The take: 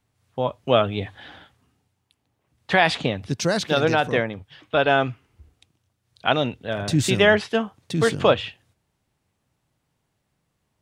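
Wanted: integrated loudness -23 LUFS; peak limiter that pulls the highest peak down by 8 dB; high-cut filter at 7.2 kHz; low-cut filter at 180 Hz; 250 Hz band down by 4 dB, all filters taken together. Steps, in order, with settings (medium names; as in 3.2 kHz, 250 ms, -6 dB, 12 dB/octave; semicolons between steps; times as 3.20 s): high-pass 180 Hz; low-pass 7.2 kHz; peaking EQ 250 Hz -3.5 dB; trim +2.5 dB; peak limiter -9 dBFS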